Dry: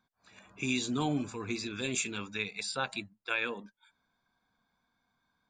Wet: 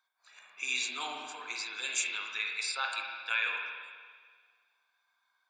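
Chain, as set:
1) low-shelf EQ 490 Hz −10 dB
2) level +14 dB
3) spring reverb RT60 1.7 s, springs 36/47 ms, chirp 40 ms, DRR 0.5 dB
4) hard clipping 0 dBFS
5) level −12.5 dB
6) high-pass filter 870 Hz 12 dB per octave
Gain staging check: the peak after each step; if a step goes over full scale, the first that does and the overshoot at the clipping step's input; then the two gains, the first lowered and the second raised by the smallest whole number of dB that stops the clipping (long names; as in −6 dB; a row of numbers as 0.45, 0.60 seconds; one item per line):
−18.5, −4.5, −4.5, −4.5, −17.0, −16.5 dBFS
no step passes full scale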